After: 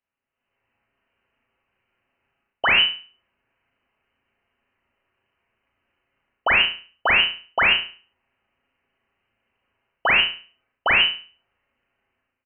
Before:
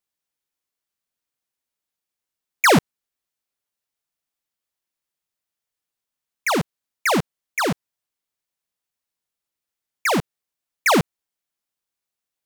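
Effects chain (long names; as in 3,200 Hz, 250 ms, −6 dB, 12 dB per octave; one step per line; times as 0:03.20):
one-sided soft clipper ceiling −17.5 dBFS
comb filter 6.9 ms, depth 46%
reversed playback
downward compressor 6 to 1, threshold −28 dBFS, peak gain reduction 13.5 dB
reversed playback
brickwall limiter −29.5 dBFS, peak gain reduction 8.5 dB
automatic gain control gain up to 16 dB
in parallel at −7 dB: hard clipping −25 dBFS, distortion −7 dB
on the sum: flutter between parallel walls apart 6 metres, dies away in 0.39 s
voice inversion scrambler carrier 3,000 Hz
level −2 dB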